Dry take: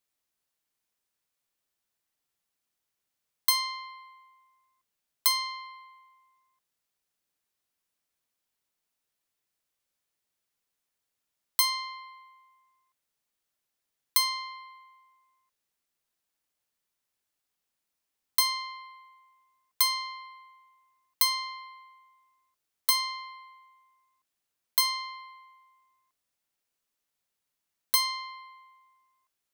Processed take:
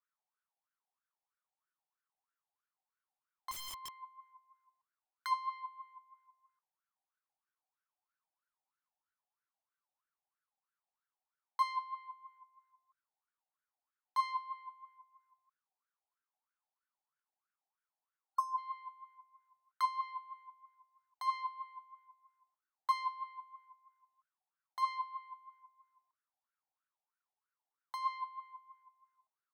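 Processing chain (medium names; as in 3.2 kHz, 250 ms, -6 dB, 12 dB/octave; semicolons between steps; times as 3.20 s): wah-wah 3.1 Hz 750–1500 Hz, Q 9.9; 3.51–4.02 s: integer overflow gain 48 dB; 18.32–18.56 s: spectral replace 1.4–4.3 kHz before; trim +7.5 dB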